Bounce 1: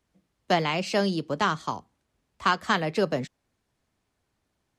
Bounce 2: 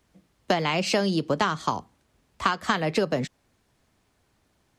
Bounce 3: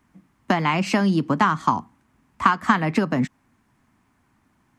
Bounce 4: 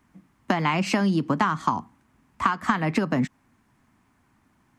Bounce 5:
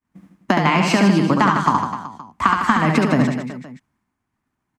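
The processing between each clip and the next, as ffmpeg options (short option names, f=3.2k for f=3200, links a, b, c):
-af "acompressor=threshold=-28dB:ratio=12,volume=8.5dB"
-af "equalizer=f=125:t=o:w=1:g=4,equalizer=f=250:t=o:w=1:g=11,equalizer=f=500:t=o:w=1:g=-8,equalizer=f=1k:t=o:w=1:g=9,equalizer=f=2k:t=o:w=1:g=5,equalizer=f=4k:t=o:w=1:g=-6,volume=-1dB"
-af "acompressor=threshold=-19dB:ratio=3"
-af "agate=range=-33dB:threshold=-51dB:ratio=3:detection=peak,aecho=1:1:70|154|254.8|375.8|520.9:0.631|0.398|0.251|0.158|0.1,volume=5.5dB"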